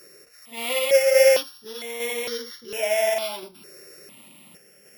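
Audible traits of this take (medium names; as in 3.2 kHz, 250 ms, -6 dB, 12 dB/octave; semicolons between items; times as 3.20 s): a buzz of ramps at a fixed pitch in blocks of 8 samples; random-step tremolo; notches that jump at a steady rate 2.2 Hz 890–2500 Hz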